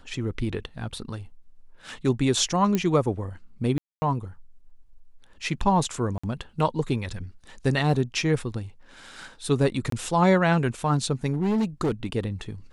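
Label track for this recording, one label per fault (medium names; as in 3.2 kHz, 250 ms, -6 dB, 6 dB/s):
2.750000	2.750000	pop -11 dBFS
3.780000	4.020000	dropout 240 ms
6.180000	6.240000	dropout 55 ms
9.900000	9.920000	dropout 23 ms
11.320000	12.050000	clipped -20 dBFS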